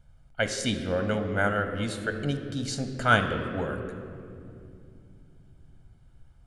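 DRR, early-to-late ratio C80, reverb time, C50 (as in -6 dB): 6.5 dB, 9.0 dB, 2.6 s, 8.0 dB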